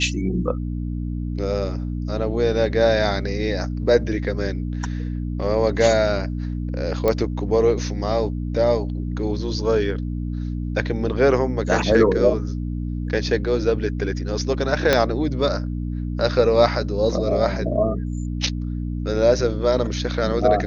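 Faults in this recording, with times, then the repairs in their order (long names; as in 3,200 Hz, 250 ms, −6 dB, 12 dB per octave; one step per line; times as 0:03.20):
mains hum 60 Hz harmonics 5 −26 dBFS
0:07.08: click −8 dBFS
0:14.93: click −2 dBFS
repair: click removal
hum removal 60 Hz, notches 5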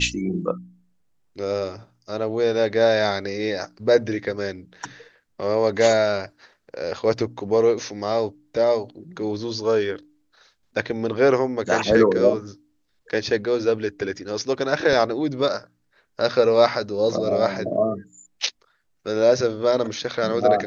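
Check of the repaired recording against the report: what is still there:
0:14.93: click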